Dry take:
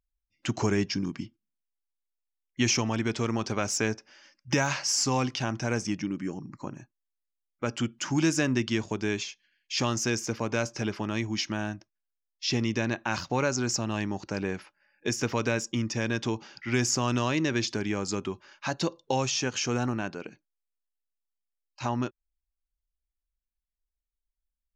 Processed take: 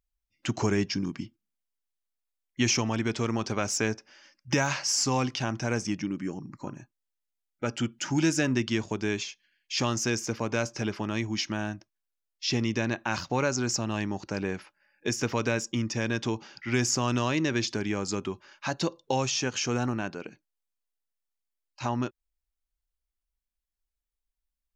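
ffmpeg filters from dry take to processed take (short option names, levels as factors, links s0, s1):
-filter_complex "[0:a]asettb=1/sr,asplit=3[s0][s1][s2];[s0]atrim=end=6.604[s3];[s1]atrim=start=6.6:end=8.51,asetpts=PTS-STARTPTS,afade=t=in:d=0.004:c=qsin,afade=t=out:st=1.906:d=0.004:c=qsin,asuperstop=centerf=1100:order=20:qfactor=7.6[s4];[s2]atrim=start=8.506[s5];[s3][s4]acrossfade=d=0.004:c1=hsin:c2=qsin[s6];[s6][s5]acrossfade=d=0.004:c1=qsin:c2=hsin"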